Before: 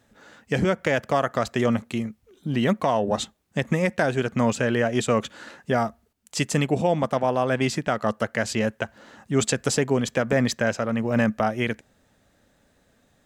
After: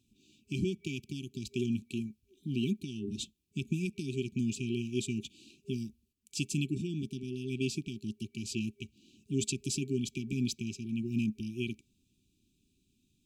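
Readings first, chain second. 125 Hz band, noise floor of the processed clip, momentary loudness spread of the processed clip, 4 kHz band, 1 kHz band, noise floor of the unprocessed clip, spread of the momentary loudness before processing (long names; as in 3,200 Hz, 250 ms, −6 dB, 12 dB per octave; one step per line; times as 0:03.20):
−8.5 dB, −75 dBFS, 8 LU, −8.5 dB, below −40 dB, −65 dBFS, 8 LU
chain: brick-wall band-stop 400–2,300 Hz
level −8.5 dB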